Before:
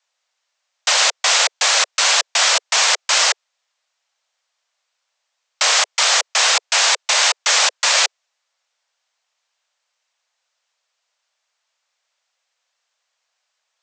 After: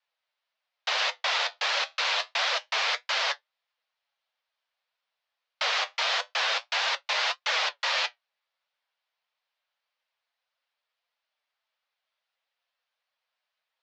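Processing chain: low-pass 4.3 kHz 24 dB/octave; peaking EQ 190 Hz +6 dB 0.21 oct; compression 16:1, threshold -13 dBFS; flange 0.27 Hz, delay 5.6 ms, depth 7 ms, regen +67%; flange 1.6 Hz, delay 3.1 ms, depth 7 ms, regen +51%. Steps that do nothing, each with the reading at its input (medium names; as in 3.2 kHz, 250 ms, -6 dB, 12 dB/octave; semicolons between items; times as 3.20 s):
peaking EQ 190 Hz: input has nothing below 380 Hz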